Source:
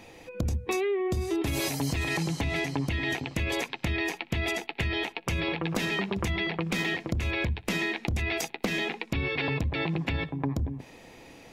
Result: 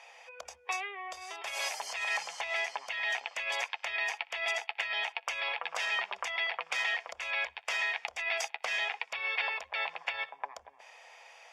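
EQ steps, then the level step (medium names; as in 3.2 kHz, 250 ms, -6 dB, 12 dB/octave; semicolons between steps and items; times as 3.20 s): inverse Chebyshev high-pass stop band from 330 Hz, stop band 40 dB; low-pass 6.7 kHz 12 dB/octave; band-stop 4 kHz, Q 5.5; 0.0 dB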